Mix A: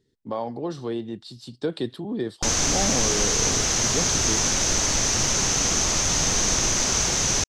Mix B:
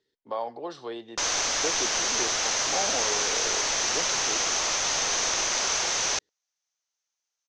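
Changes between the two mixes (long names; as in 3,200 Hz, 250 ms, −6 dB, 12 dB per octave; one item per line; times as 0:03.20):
background: entry −1.25 s
master: add three-way crossover with the lows and the highs turned down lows −20 dB, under 440 Hz, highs −18 dB, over 6,300 Hz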